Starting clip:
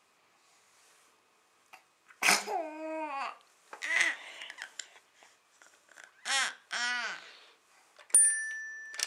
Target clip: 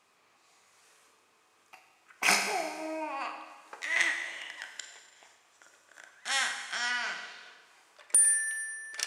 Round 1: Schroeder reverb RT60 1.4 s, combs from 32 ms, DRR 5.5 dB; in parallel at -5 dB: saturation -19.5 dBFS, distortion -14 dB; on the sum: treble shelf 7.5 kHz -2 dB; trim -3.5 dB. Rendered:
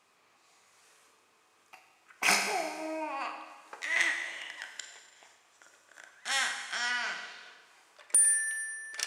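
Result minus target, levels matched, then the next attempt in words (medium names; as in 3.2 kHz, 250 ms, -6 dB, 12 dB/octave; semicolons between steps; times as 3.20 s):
saturation: distortion +13 dB
Schroeder reverb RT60 1.4 s, combs from 32 ms, DRR 5.5 dB; in parallel at -5 dB: saturation -10 dBFS, distortion -27 dB; on the sum: treble shelf 7.5 kHz -2 dB; trim -3.5 dB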